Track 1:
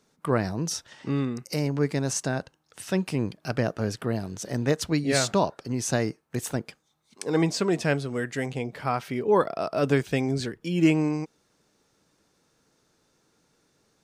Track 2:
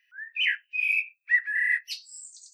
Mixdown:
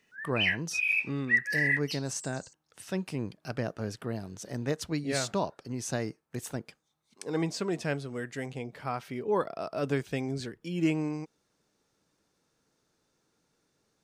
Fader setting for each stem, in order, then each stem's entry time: −7.0, −2.5 decibels; 0.00, 0.00 seconds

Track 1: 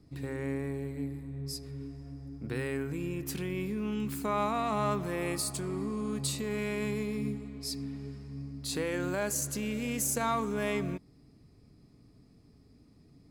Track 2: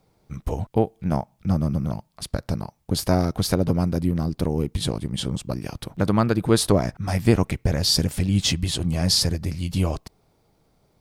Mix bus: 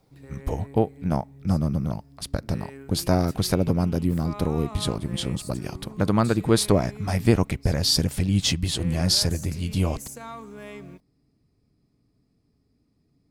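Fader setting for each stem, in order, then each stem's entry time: −8.5, −1.0 decibels; 0.00, 0.00 seconds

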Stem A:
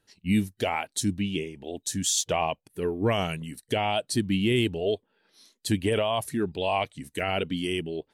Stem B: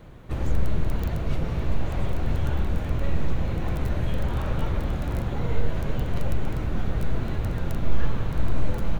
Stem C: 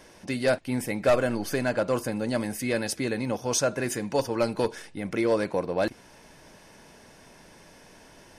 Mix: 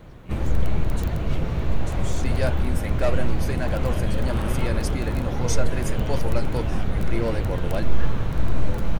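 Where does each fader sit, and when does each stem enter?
−15.5, +2.0, −4.0 decibels; 0.00, 0.00, 1.95 seconds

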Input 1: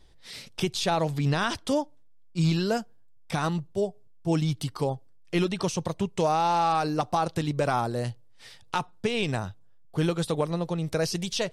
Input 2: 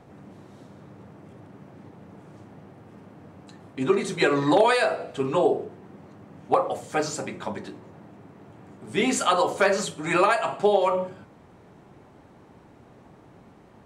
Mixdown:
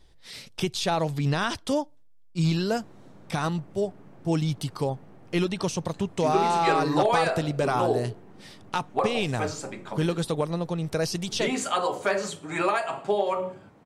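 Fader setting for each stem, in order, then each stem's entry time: 0.0, −4.5 decibels; 0.00, 2.45 seconds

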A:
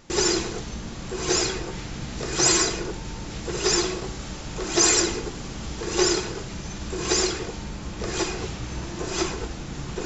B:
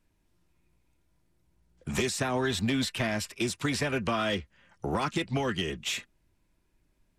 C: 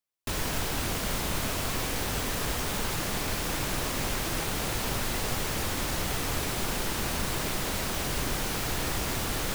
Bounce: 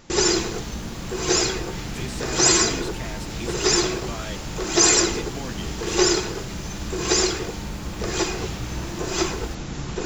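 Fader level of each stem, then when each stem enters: +2.5, −6.5, −16.0 decibels; 0.00, 0.00, 0.00 seconds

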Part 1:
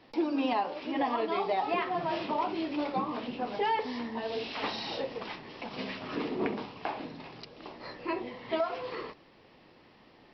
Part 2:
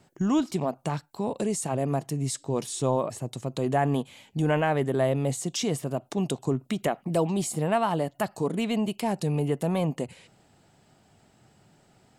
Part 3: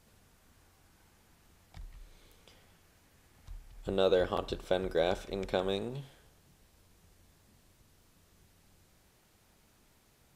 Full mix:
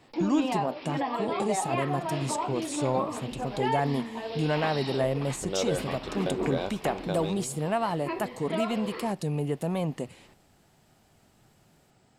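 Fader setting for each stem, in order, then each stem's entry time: −0.5, −3.0, −2.5 decibels; 0.00, 0.00, 1.55 seconds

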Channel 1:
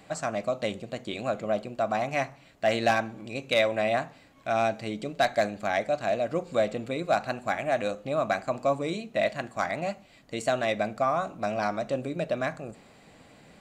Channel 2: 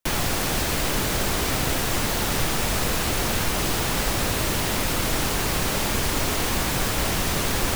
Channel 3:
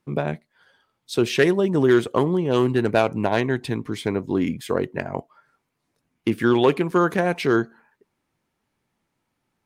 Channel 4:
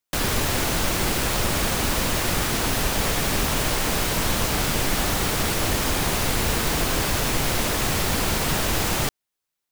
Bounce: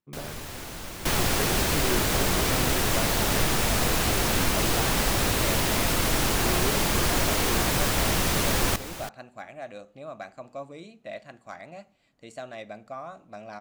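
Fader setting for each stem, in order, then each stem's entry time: −12.5, −0.5, −15.5, −15.0 decibels; 1.90, 1.00, 0.00, 0.00 seconds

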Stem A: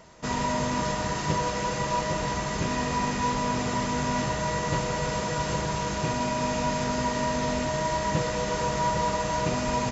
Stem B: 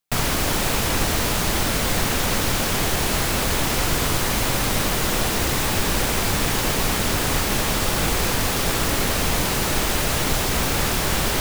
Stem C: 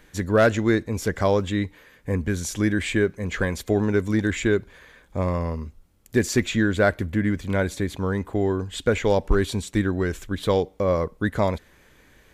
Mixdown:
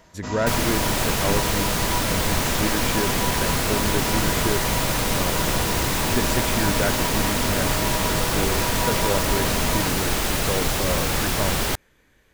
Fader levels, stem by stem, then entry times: −2.5, −1.5, −6.0 decibels; 0.00, 0.35, 0.00 seconds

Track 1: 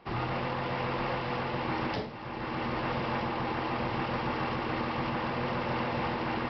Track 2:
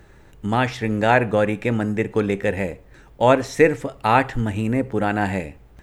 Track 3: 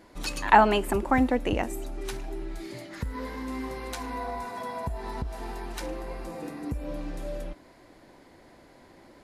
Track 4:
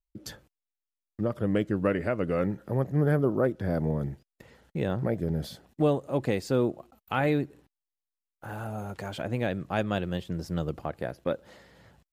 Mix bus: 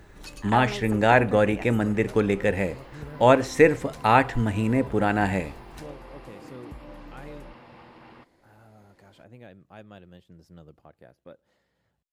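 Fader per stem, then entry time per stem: −17.5, −1.5, −10.0, −18.0 decibels; 1.75, 0.00, 0.00, 0.00 seconds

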